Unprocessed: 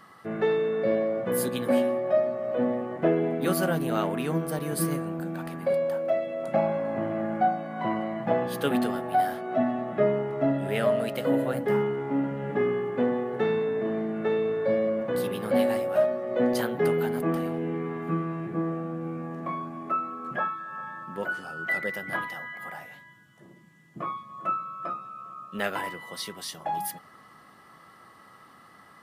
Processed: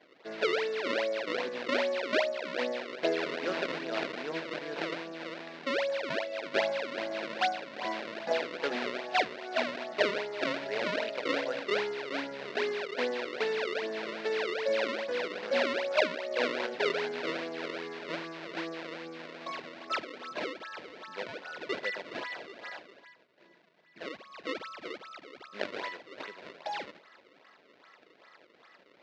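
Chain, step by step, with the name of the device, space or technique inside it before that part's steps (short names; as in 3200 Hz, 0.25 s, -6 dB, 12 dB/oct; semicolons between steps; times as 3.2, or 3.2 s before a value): circuit-bent sampling toy (decimation with a swept rate 31×, swing 160% 2.5 Hz; speaker cabinet 600–4100 Hz, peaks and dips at 790 Hz -7 dB, 1200 Hz -9 dB, 3200 Hz -4 dB); gain +1 dB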